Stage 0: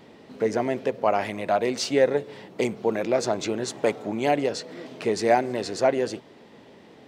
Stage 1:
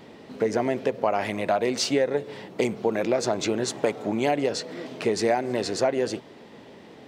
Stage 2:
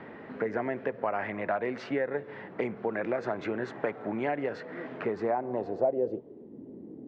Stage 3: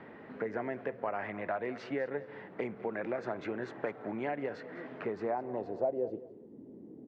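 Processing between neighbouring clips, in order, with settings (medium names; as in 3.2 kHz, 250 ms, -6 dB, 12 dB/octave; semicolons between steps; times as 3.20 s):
compression 6:1, threshold -22 dBFS, peak gain reduction 8.5 dB; trim +3 dB
low-pass sweep 1.7 kHz -> 310 Hz, 4.94–6.56 s; three bands compressed up and down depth 40%; trim -8 dB
feedback delay 204 ms, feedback 24%, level -17 dB; trim -5 dB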